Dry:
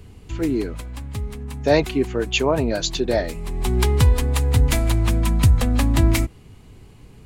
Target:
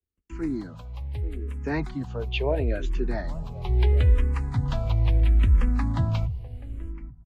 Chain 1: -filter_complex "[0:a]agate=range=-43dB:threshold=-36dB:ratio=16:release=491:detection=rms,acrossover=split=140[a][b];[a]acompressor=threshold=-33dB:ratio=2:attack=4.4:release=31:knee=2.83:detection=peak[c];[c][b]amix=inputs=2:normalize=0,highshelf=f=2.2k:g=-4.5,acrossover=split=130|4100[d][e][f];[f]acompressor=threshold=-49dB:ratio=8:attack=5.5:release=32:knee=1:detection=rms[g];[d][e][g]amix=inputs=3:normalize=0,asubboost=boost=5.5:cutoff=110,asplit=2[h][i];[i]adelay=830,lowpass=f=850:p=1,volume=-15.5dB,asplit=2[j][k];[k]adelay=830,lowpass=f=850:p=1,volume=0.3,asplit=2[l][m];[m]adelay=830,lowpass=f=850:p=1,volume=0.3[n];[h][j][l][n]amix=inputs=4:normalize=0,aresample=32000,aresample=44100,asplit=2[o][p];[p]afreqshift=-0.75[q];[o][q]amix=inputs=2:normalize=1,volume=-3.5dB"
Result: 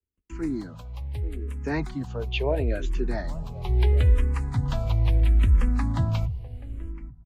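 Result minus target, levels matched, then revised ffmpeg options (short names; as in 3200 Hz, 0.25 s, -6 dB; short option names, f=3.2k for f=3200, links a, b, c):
compressor: peak gain reduction -7.5 dB
-filter_complex "[0:a]agate=range=-43dB:threshold=-36dB:ratio=16:release=491:detection=rms,acrossover=split=140[a][b];[a]acompressor=threshold=-33dB:ratio=2:attack=4.4:release=31:knee=2.83:detection=peak[c];[c][b]amix=inputs=2:normalize=0,highshelf=f=2.2k:g=-4.5,acrossover=split=130|4100[d][e][f];[f]acompressor=threshold=-57.5dB:ratio=8:attack=5.5:release=32:knee=1:detection=rms[g];[d][e][g]amix=inputs=3:normalize=0,asubboost=boost=5.5:cutoff=110,asplit=2[h][i];[i]adelay=830,lowpass=f=850:p=1,volume=-15.5dB,asplit=2[j][k];[k]adelay=830,lowpass=f=850:p=1,volume=0.3,asplit=2[l][m];[m]adelay=830,lowpass=f=850:p=1,volume=0.3[n];[h][j][l][n]amix=inputs=4:normalize=0,aresample=32000,aresample=44100,asplit=2[o][p];[p]afreqshift=-0.75[q];[o][q]amix=inputs=2:normalize=1,volume=-3.5dB"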